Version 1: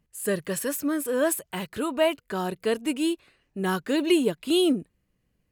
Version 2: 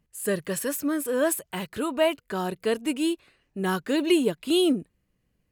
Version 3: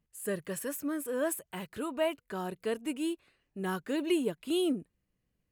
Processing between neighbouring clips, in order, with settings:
no audible change
dynamic bell 4.4 kHz, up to -5 dB, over -48 dBFS, Q 1.4; trim -7.5 dB

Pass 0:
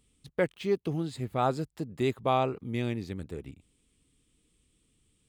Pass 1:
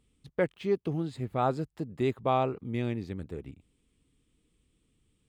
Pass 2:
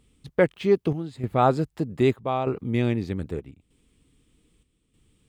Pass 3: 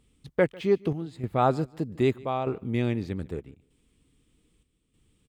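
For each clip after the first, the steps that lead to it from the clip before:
treble shelf 3.6 kHz -9 dB
square tremolo 0.81 Hz, depth 60%, duty 75%; trim +8 dB
feedback delay 148 ms, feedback 16%, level -23.5 dB; trim -3 dB

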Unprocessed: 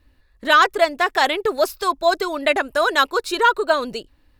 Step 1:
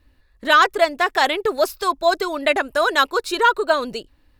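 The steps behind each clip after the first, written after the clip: no audible change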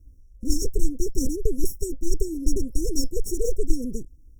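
comb filter that takes the minimum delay 0.88 ms; bass shelf 86 Hz +12 dB; FFT band-reject 530–5400 Hz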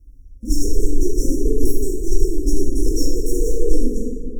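plate-style reverb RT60 2.2 s, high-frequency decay 0.35×, DRR -5.5 dB; trim -1 dB

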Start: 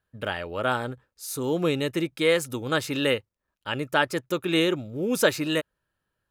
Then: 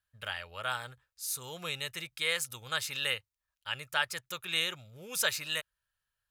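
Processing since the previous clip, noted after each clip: amplifier tone stack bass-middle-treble 10-0-10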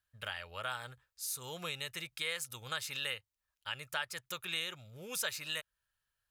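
compression 2:1, threshold -38 dBFS, peak gain reduction 8.5 dB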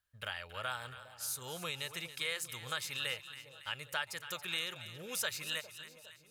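two-band feedback delay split 870 Hz, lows 407 ms, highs 278 ms, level -12.5 dB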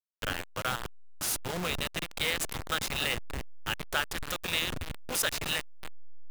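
send-on-delta sampling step -35 dBFS; trim +7.5 dB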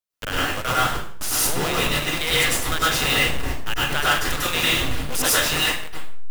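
plate-style reverb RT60 0.53 s, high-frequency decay 0.85×, pre-delay 90 ms, DRR -7.5 dB; trim +3.5 dB

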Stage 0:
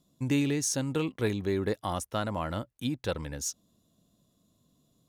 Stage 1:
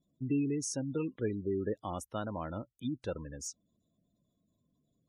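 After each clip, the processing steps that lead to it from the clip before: spectral gate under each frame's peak -20 dB strong; dynamic bell 320 Hz, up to +4 dB, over -39 dBFS, Q 0.73; trim -7.5 dB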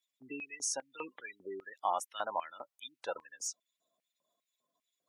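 LFO high-pass square 2.5 Hz 820–2200 Hz; trim +3 dB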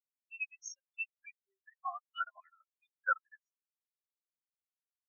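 band-pass sweep 4 kHz -> 1.5 kHz, 0.29–3.16 s; Butterworth band-stop 920 Hz, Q 3.6; spectral contrast expander 4:1; trim +14.5 dB

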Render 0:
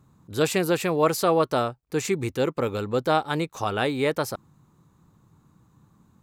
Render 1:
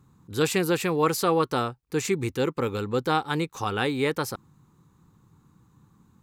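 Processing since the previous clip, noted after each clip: peaking EQ 630 Hz -14 dB 0.23 oct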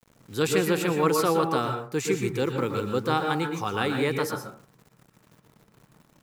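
high-pass 100 Hz 24 dB/octave; bit crusher 9-bit; on a send at -4 dB: reverberation RT60 0.40 s, pre-delay 107 ms; on the sum: trim -1.5 dB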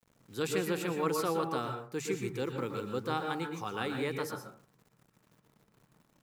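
hum notches 50/100/150 Hz; trim -8.5 dB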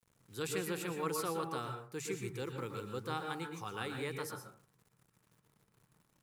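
fifteen-band graphic EQ 100 Hz +3 dB, 250 Hz -5 dB, 630 Hz -4 dB, 10 kHz +6 dB; trim -4 dB

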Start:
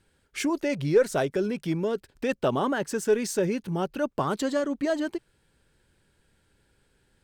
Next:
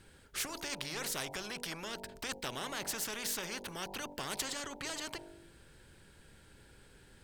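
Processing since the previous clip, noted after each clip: de-hum 48.64 Hz, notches 20; spectrum-flattening compressor 4:1; trim -7 dB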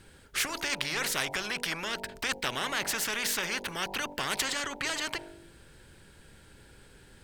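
dynamic bell 2 kHz, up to +7 dB, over -55 dBFS, Q 0.74; trim +4.5 dB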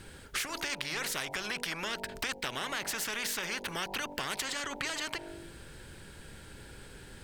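compression 4:1, threshold -39 dBFS, peak gain reduction 12 dB; trim +5.5 dB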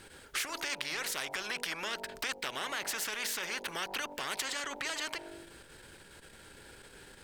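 tone controls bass -9 dB, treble 0 dB; transformer saturation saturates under 2.6 kHz

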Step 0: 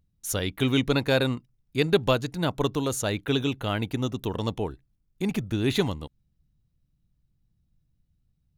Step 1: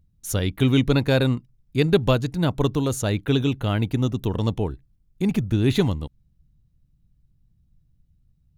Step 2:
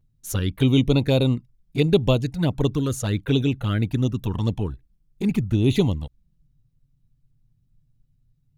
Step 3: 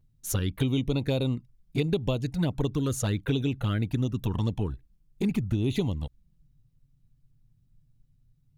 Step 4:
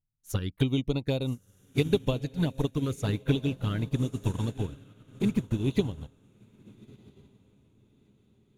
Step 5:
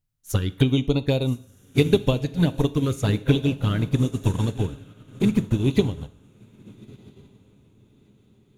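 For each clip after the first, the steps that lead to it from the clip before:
bass shelf 260 Hz +9.5 dB
touch-sensitive flanger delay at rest 8 ms, full sweep at -16 dBFS; trim +1 dB
compression, threshold -23 dBFS, peak gain reduction 11.5 dB
echo that smears into a reverb 1321 ms, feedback 51%, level -9 dB; upward expansion 2.5:1, over -38 dBFS; trim +3.5 dB
plate-style reverb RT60 0.54 s, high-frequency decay 0.95×, DRR 14.5 dB; trim +6.5 dB

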